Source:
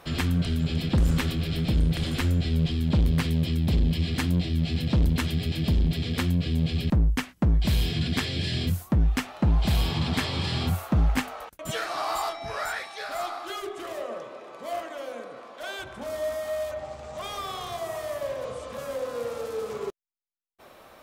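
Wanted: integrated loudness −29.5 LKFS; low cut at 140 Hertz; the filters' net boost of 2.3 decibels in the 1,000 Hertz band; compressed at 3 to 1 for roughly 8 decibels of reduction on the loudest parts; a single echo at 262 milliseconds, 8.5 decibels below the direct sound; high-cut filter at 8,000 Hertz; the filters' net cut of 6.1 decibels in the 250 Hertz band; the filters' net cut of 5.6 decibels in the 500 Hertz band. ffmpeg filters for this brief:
ffmpeg -i in.wav -af "highpass=140,lowpass=8000,equalizer=frequency=250:width_type=o:gain=-6,equalizer=frequency=500:width_type=o:gain=-8.5,equalizer=frequency=1000:width_type=o:gain=6,acompressor=threshold=-35dB:ratio=3,aecho=1:1:262:0.376,volume=7.5dB" out.wav

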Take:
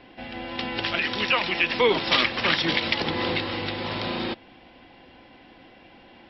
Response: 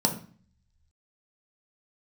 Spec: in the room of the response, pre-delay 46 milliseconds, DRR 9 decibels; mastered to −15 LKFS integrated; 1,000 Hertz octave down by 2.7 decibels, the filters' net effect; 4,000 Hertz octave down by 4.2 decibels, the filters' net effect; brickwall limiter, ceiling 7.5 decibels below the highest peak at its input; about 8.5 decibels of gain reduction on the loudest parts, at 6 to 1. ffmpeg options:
-filter_complex "[0:a]equalizer=frequency=1000:width_type=o:gain=-3,equalizer=frequency=4000:width_type=o:gain=-5.5,acompressor=threshold=-26dB:ratio=6,alimiter=limit=-21.5dB:level=0:latency=1,asplit=2[link_01][link_02];[1:a]atrim=start_sample=2205,adelay=46[link_03];[link_02][link_03]afir=irnorm=-1:irlink=0,volume=-19.5dB[link_04];[link_01][link_04]amix=inputs=2:normalize=0,volume=16.5dB"

